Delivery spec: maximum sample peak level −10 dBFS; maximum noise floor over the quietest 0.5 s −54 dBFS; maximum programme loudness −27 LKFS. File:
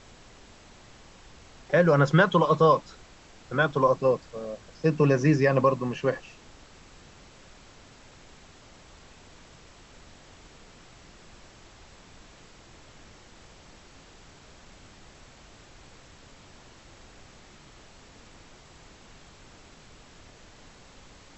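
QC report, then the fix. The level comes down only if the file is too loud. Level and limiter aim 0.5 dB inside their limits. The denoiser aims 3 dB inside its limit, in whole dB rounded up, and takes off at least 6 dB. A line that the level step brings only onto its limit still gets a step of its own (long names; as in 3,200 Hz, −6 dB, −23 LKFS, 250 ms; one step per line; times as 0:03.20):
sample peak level −8.0 dBFS: out of spec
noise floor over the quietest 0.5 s −52 dBFS: out of spec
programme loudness −23.5 LKFS: out of spec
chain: level −4 dB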